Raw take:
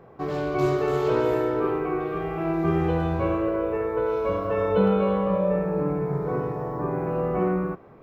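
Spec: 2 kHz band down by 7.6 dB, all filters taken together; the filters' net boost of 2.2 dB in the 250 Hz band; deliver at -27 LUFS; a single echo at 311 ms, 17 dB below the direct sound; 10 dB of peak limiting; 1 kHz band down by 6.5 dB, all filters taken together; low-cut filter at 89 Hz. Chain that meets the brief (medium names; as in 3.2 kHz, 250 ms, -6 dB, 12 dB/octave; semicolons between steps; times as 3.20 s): high-pass 89 Hz; peaking EQ 250 Hz +4.5 dB; peaking EQ 1 kHz -7 dB; peaking EQ 2 kHz -7.5 dB; peak limiter -19.5 dBFS; delay 311 ms -17 dB; trim +0.5 dB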